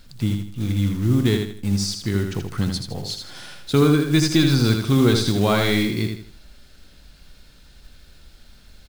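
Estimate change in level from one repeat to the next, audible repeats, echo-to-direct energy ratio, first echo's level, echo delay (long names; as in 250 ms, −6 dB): −9.5 dB, 4, −5.0 dB, −5.5 dB, 80 ms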